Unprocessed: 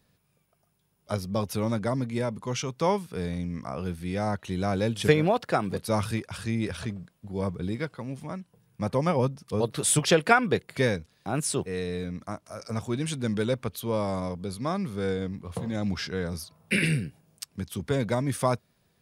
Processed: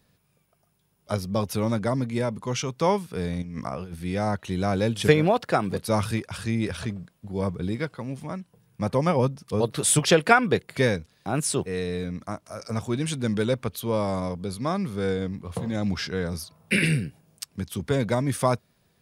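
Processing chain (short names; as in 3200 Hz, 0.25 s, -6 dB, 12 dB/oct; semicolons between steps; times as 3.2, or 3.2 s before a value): 3.42–3.94 negative-ratio compressor -35 dBFS, ratio -0.5; gain +2.5 dB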